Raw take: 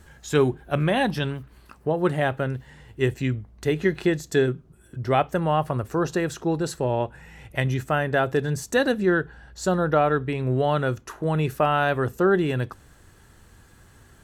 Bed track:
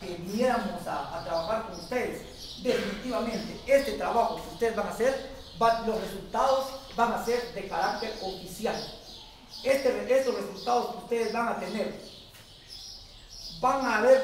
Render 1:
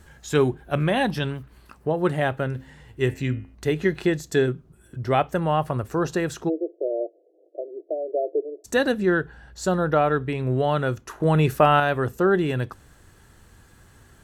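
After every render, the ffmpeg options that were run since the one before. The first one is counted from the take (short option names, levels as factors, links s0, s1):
-filter_complex "[0:a]asettb=1/sr,asplit=3[s0][s1][s2];[s0]atrim=end=2.484[s3];[s1]atrim=start=2.48:end=3.55,asetpts=PTS-STARTPTS,afade=t=in:d=0.004:c=qsin,afade=t=out:st=1.066:d=0.004:c=qsin,bandreject=f=88.12:t=h:w=4,bandreject=f=176.24:t=h:w=4,bandreject=f=264.36:t=h:w=4,bandreject=f=352.48:t=h:w=4,bandreject=f=440.6:t=h:w=4,bandreject=f=528.72:t=h:w=4,bandreject=f=616.84:t=h:w=4,bandreject=f=704.96:t=h:w=4,bandreject=f=793.08:t=h:w=4,bandreject=f=881.2:t=h:w=4,bandreject=f=969.32:t=h:w=4,bandreject=f=1057.44:t=h:w=4,bandreject=f=1145.56:t=h:w=4,bandreject=f=1233.68:t=h:w=4,bandreject=f=1321.8:t=h:w=4,bandreject=f=1409.92:t=h:w=4,bandreject=f=1498.04:t=h:w=4,bandreject=f=1586.16:t=h:w=4,bandreject=f=1674.28:t=h:w=4,bandreject=f=1762.4:t=h:w=4,bandreject=f=1850.52:t=h:w=4,bandreject=f=1938.64:t=h:w=4,bandreject=f=2026.76:t=h:w=4,bandreject=f=2114.88:t=h:w=4,bandreject=f=2203:t=h:w=4,bandreject=f=2291.12:t=h:w=4,bandreject=f=2379.24:t=h:w=4,bandreject=f=2467.36:t=h:w=4,bandreject=f=2555.48:t=h:w=4,bandreject=f=2643.6:t=h:w=4,bandreject=f=2731.72:t=h:w=4,bandreject=f=2819.84:t=h:w=4,bandreject=f=2907.96:t=h:w=4,bandreject=f=2996.08:t=h:w=4[s4];[s2]atrim=start=3.546[s5];[s3][s4]acrossfade=d=0.004:c1=hsin:c2=qsin[s6];[s6][s5]acrossfade=d=0.004:c1=qsin:c2=hsin,asplit=3[s7][s8][s9];[s7]afade=t=out:st=6.48:d=0.02[s10];[s8]asuperpass=centerf=460:order=20:qfactor=1.2,afade=t=in:st=6.48:d=0.02,afade=t=out:st=8.64:d=0.02[s11];[s9]afade=t=in:st=8.64:d=0.02[s12];[s10][s11][s12]amix=inputs=3:normalize=0,asplit=3[s13][s14][s15];[s13]atrim=end=11.202[s16];[s14]atrim=start=11.198:end=11.802,asetpts=PTS-STARTPTS,volume=1.68[s17];[s15]atrim=start=11.798[s18];[s16][s17]acrossfade=d=0.004:c1=hsin:c2=hsin[s19];[s19][s18]acrossfade=d=0.004:c1=hsin:c2=hsin"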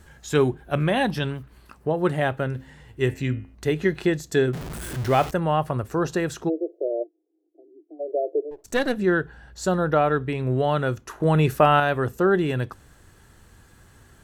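-filter_complex "[0:a]asettb=1/sr,asplit=3[s0][s1][s2];[s0]atrim=end=4.534[s3];[s1]atrim=start=4.53:end=5.31,asetpts=PTS-STARTPTS,afade=t=in:d=0.004:c=qsin,afade=t=out:st=0.776:d=0.004:c=qsin,aeval=exprs='val(0)+0.5*0.0376*sgn(val(0))':c=same[s4];[s2]atrim=start=5.306[s5];[s3][s4]acrossfade=d=0.004:c1=hsin:c2=qsin[s6];[s6][s5]acrossfade=d=0.004:c1=qsin:c2=hsin,asplit=3[s7][s8][s9];[s7]afade=t=out:st=7.02:d=0.02[s10];[s8]asplit=3[s11][s12][s13];[s11]bandpass=f=300:t=q:w=8,volume=1[s14];[s12]bandpass=f=870:t=q:w=8,volume=0.501[s15];[s13]bandpass=f=2240:t=q:w=8,volume=0.355[s16];[s14][s15][s16]amix=inputs=3:normalize=0,afade=t=in:st=7.02:d=0.02,afade=t=out:st=7.99:d=0.02[s17];[s9]afade=t=in:st=7.99:d=0.02[s18];[s10][s17][s18]amix=inputs=3:normalize=0,asettb=1/sr,asplit=3[s19][s20][s21];[s19]atrim=end=8.514[s22];[s20]atrim=start=8.51:end=8.97,asetpts=PTS-STARTPTS,afade=t=in:d=0.004:c=qsin,afade=t=out:st=0.456:d=0.004:c=qsin,aeval=exprs='if(lt(val(0),0),0.447*val(0),val(0))':c=same[s23];[s21]atrim=start=8.966[s24];[s22][s23]acrossfade=d=0.004:c1=hsin:c2=qsin[s25];[s25][s24]acrossfade=d=0.004:c1=qsin:c2=hsin"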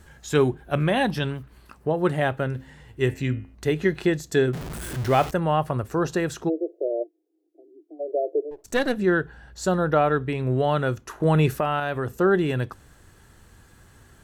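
-filter_complex "[0:a]asettb=1/sr,asplit=3[s0][s1][s2];[s0]atrim=end=11.544[s3];[s1]atrim=start=11.54:end=12.13,asetpts=PTS-STARTPTS,afade=t=in:d=0.004:c=qsin,afade=t=out:st=0.586:d=0.004:c=qsin,acompressor=threshold=0.0562:ratio=2:attack=3.2:release=140:knee=1:detection=peak[s4];[s2]atrim=start=12.126[s5];[s3][s4]acrossfade=d=0.004:c1=hsin:c2=qsin[s6];[s6][s5]acrossfade=d=0.004:c1=qsin:c2=hsin"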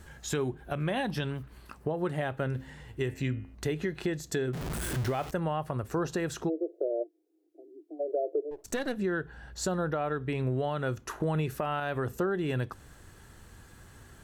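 -af "alimiter=limit=0.15:level=0:latency=1:release=293,acompressor=threshold=0.0316:ratio=2"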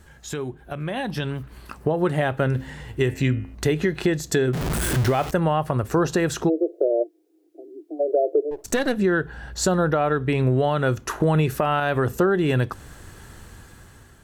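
-af "dynaudnorm=f=890:g=3:m=3.16"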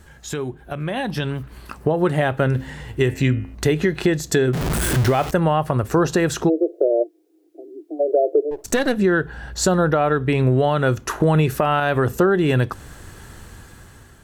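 -af "volume=1.41"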